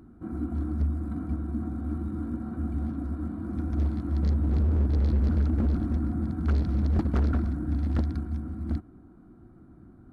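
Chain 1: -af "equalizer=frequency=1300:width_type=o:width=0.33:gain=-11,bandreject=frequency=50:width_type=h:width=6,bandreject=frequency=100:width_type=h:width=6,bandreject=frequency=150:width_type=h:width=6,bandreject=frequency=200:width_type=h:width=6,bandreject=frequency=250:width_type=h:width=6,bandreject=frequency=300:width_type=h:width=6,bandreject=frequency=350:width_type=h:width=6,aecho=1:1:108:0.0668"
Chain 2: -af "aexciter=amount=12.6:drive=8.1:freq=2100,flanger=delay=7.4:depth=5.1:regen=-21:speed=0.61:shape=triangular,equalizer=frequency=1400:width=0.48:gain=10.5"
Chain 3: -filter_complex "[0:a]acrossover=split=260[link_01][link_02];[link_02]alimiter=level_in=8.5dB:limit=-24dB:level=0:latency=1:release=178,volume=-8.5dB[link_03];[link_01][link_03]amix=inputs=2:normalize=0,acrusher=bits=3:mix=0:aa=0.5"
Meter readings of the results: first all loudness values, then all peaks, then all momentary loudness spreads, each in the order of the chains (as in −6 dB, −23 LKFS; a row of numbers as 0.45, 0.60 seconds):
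−29.0, −29.0, −27.0 LKFS; −17.5, −4.0, −17.0 dBFS; 9, 9, 18 LU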